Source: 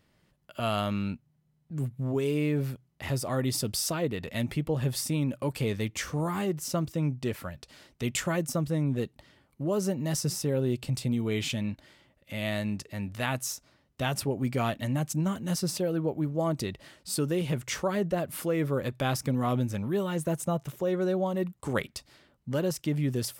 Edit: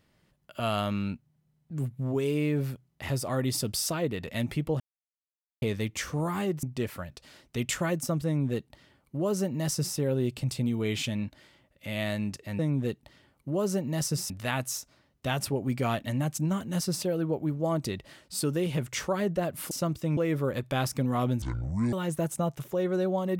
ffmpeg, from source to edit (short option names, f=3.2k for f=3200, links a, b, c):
-filter_complex "[0:a]asplit=10[a][b][c][d][e][f][g][h][i][j];[a]atrim=end=4.8,asetpts=PTS-STARTPTS,afade=t=out:st=4.796:d=0.004:c=hsin[k];[b]atrim=start=4.8:end=5.62,asetpts=PTS-STARTPTS,volume=0[l];[c]atrim=start=5.62:end=6.632,asetpts=PTS-STARTPTS,afade=t=in:d=0.004:c=hsin[m];[d]atrim=start=7.088:end=13.052[n];[e]atrim=start=8.718:end=10.432[o];[f]atrim=start=13.048:end=18.462[p];[g]atrim=start=6.628:end=7.092[q];[h]atrim=start=18.458:end=19.714[r];[i]atrim=start=19.71:end=20.01,asetpts=PTS-STARTPTS,asetrate=26019,aresample=44100[s];[j]atrim=start=20.006[t];[k][l][m]concat=n=3:v=0:a=1[u];[u][n]acrossfade=d=0.004:c1=hsin:c2=hsin[v];[v][o]acrossfade=d=0.004:c1=hsin:c2=hsin[w];[w][p]acrossfade=d=0.004:c1=hsin:c2=hsin[x];[x][q]acrossfade=d=0.004:c1=hsin:c2=hsin[y];[y][r]acrossfade=d=0.004:c1=hsin:c2=hsin[z];[z][s]acrossfade=d=0.004:c1=hsin:c2=hsin[aa];[aa][t]acrossfade=d=0.004:c1=hsin:c2=hsin"